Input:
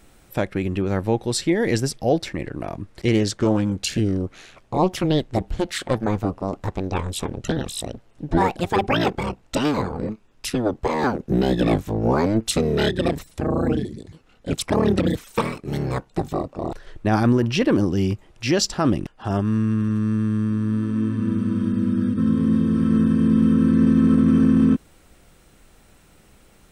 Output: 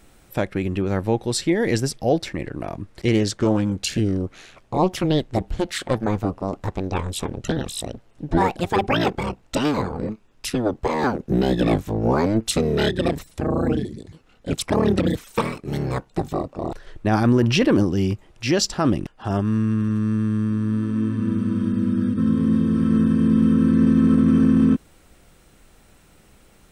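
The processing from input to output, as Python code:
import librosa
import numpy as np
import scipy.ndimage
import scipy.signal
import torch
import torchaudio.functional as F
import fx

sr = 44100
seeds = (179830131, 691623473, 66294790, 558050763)

y = fx.env_flatten(x, sr, amount_pct=50, at=(17.28, 17.83))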